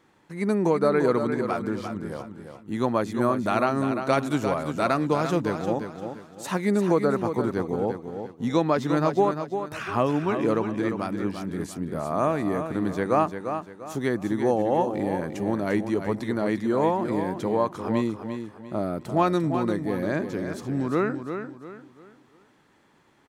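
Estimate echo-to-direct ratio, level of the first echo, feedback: -7.5 dB, -8.0 dB, 34%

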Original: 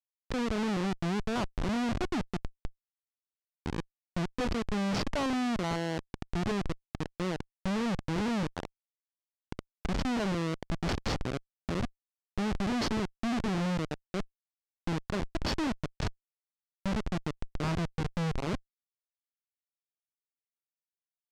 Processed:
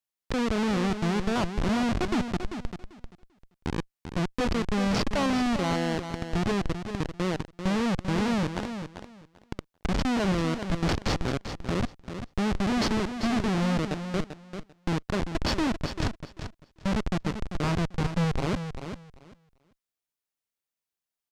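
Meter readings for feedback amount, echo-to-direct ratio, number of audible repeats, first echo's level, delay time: 18%, -9.0 dB, 2, -9.0 dB, 0.392 s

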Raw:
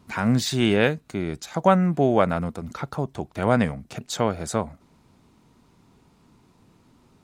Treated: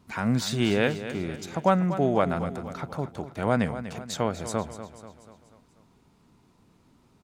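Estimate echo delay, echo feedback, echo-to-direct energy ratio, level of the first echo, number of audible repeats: 0.243 s, 51%, -10.5 dB, -12.0 dB, 4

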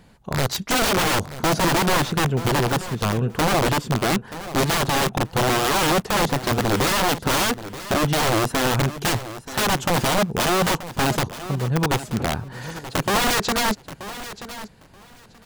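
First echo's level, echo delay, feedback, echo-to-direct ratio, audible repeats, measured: -14.0 dB, 0.93 s, 17%, -14.0 dB, 2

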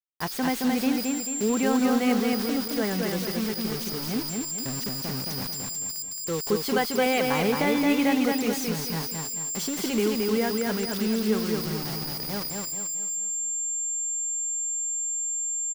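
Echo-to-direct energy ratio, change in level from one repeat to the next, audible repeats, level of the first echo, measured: -2.0 dB, -7.0 dB, 5, -3.0 dB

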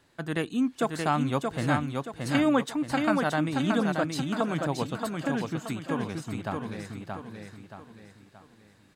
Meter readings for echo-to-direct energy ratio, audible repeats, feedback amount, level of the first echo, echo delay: -3.0 dB, 4, 40%, -4.0 dB, 0.626 s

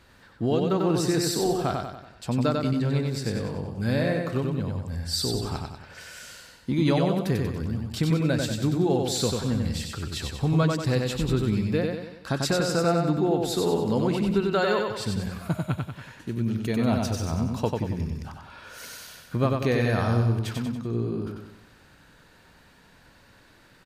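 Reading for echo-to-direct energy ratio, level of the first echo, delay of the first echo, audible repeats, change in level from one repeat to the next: -2.5 dB, -3.5 dB, 94 ms, 5, -6.5 dB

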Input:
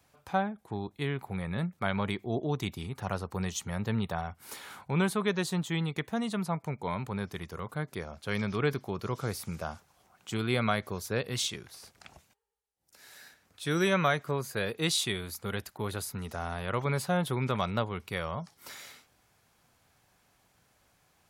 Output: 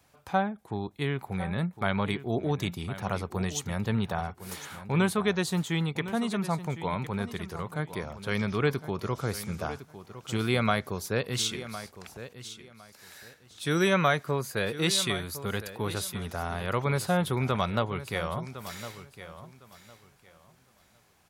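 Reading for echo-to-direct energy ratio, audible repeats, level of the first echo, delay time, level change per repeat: -13.5 dB, 2, -13.5 dB, 1.058 s, -13.0 dB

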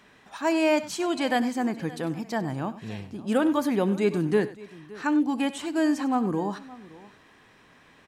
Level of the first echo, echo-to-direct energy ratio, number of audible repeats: -20.0 dB, -13.5 dB, 3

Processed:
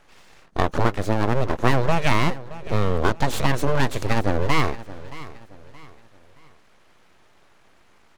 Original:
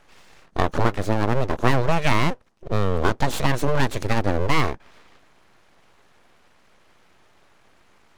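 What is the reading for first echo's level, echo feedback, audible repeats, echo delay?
-17.0 dB, 37%, 3, 0.623 s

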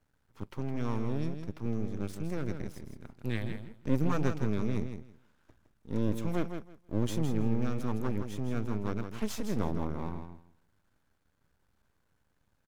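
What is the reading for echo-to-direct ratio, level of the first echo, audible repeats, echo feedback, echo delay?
-8.0 dB, -8.0 dB, 2, 18%, 0.162 s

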